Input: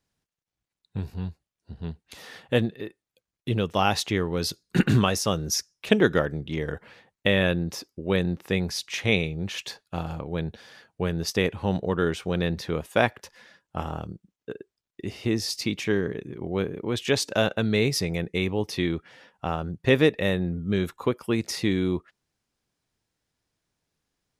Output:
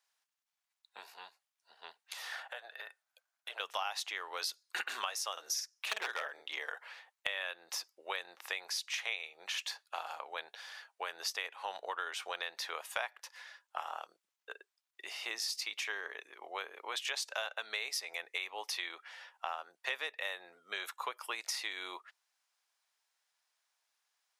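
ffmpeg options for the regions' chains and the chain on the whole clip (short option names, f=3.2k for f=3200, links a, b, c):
-filter_complex "[0:a]asettb=1/sr,asplit=3[a][b][c];[a]atrim=end=2.324[d];[b]atrim=start=2.32:end=3.6,asetpts=PTS-STARTPTS,afade=t=in:d=0.004:c=qsin,afade=t=out:st=1.276:d=0.004:c=qsin,highpass=f=640:t=q:w=3,equalizer=f=1.5k:t=o:w=0.26:g=12,acompressor=threshold=-37dB:ratio=8:attack=3.2:release=140:knee=1:detection=peak[e];[c]atrim=start=3.596[f];[d][e]acrossfade=d=0.004:c1=hsin:c2=qsin[g];[g][f]acrossfade=d=0.004:c1=qsin:c2=hsin,asettb=1/sr,asplit=3[h][i][j];[h]atrim=end=5.324[k];[i]atrim=start=5.32:end=6.47,asetpts=PTS-STARTPTS,afade=t=in:d=0.004:c=qsin,afade=t=out:st=1.146:d=0.004:c=qsin,asplit=2[l][m];[m]adelay=48,volume=-5dB[n];[l][n]amix=inputs=2:normalize=0,atrim=end_sample=50715,aeval=exprs='0.237*(abs(mod(val(0)/0.237+3,4)-2)-1)':c=same[o];[j]atrim=start=6.466[p];[k][o]acrossfade=d=0.004:c1=hsin:c2=qsin[q];[q][p]acrossfade=d=0.004:c1=qsin:c2=hsin,highpass=f=770:w=0.5412,highpass=f=770:w=1.3066,acompressor=threshold=-36dB:ratio=5,volume=1dB"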